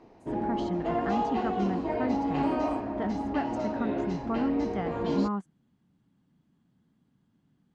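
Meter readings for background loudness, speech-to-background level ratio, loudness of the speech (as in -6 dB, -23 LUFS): -31.0 LUFS, -3.0 dB, -34.0 LUFS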